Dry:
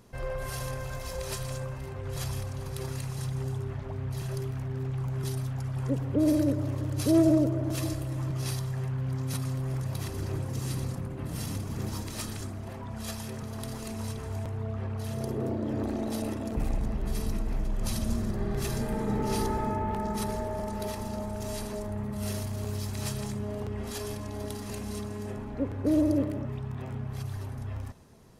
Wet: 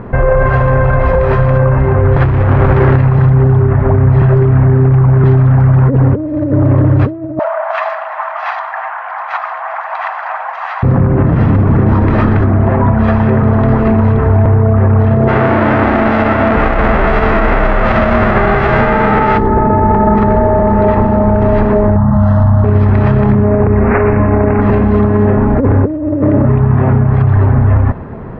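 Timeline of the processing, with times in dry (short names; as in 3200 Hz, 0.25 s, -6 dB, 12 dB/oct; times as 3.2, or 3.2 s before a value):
2.16–2.96 companded quantiser 2-bit
7.39–10.83 steep high-pass 680 Hz 72 dB/oct
15.27–19.37 spectral whitening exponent 0.3
21.96–22.64 fixed phaser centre 980 Hz, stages 4
23.44–24.61 careless resampling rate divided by 8×, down none, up filtered
whole clip: LPF 1800 Hz 24 dB/oct; negative-ratio compressor -31 dBFS, ratio -0.5; maximiser +29.5 dB; gain -1 dB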